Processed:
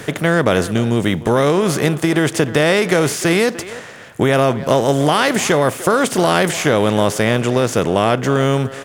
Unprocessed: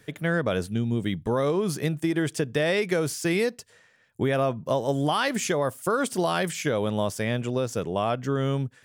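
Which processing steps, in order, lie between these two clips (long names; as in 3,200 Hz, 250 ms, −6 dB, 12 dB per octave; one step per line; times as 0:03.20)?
compressor on every frequency bin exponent 0.6
far-end echo of a speakerphone 300 ms, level −14 dB
level +7 dB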